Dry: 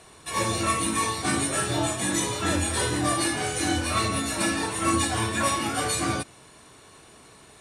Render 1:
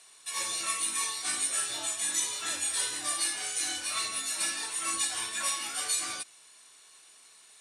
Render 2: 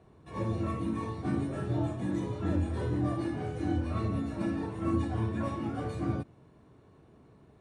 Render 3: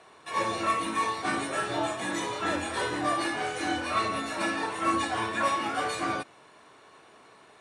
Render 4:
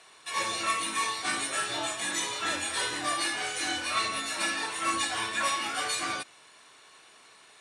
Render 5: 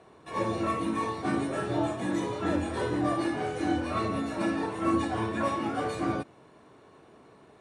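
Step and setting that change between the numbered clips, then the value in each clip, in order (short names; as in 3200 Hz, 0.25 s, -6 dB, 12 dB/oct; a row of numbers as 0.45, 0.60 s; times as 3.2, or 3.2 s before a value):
band-pass, frequency: 7500, 120, 1000, 2700, 380 Hz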